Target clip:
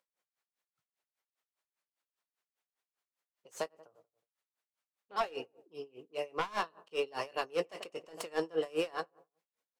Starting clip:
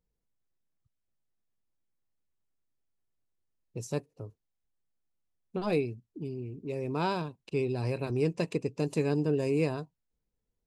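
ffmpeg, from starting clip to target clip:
-filter_complex "[0:a]acrossover=split=1700[s0][s1];[s1]aeval=exprs='clip(val(0),-1,0.00335)':c=same[s2];[s0][s2]amix=inputs=2:normalize=0,highpass=770,asetrate=48000,aresample=44100,asplit=2[s3][s4];[s4]adelay=91,lowpass=f=1300:p=1,volume=0.112,asplit=2[s5][s6];[s6]adelay=91,lowpass=f=1300:p=1,volume=0.49,asplit=2[s7][s8];[s8]adelay=91,lowpass=f=1300:p=1,volume=0.49,asplit=2[s9][s10];[s10]adelay=91,lowpass=f=1300:p=1,volume=0.49[s11];[s3][s5][s7][s9][s11]amix=inputs=5:normalize=0,asplit=2[s12][s13];[s13]aeval=exprs='0.0891*sin(PI/2*3.55*val(0)/0.0891)':c=same,volume=0.562[s14];[s12][s14]amix=inputs=2:normalize=0,highshelf=f=4500:g=-8.5,asplit=2[s15][s16];[s16]adelay=19,volume=0.251[s17];[s15][s17]amix=inputs=2:normalize=0,aeval=exprs='val(0)*pow(10,-25*(0.5-0.5*cos(2*PI*5*n/s))/20)':c=same"

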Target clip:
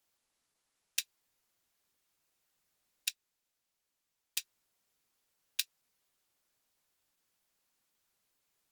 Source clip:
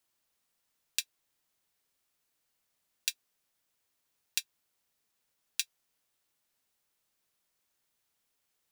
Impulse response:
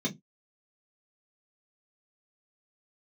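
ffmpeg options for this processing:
-filter_complex "[0:a]asettb=1/sr,asplit=3[s0][s1][s2];[s0]atrim=end=3.084[s3];[s1]atrim=start=3.08:end=4.38,asetpts=PTS-STARTPTS,afade=t=in:d=0.004:c=qsin,afade=t=out:st=1.296:d=0.004:c=qsin,aeval=exprs='0.531*(cos(1*acos(clip(val(0)/0.531,-1,1)))-cos(1*PI/2))+0.0841*(cos(3*acos(clip(val(0)/0.531,-1,1)))-cos(3*PI/2))+0.00531*(cos(4*acos(clip(val(0)/0.531,-1,1)))-cos(4*PI/2))':c=same[s4];[s2]atrim=start=4.376[s5];[s3][s4]acrossfade=d=0.004:c1=hsin:c2=qsin[s6];[s6][s5]acrossfade=d=0.004:c1=qsin:c2=hsin,volume=1.12" -ar 48000 -c:a libopus -b:a 16k

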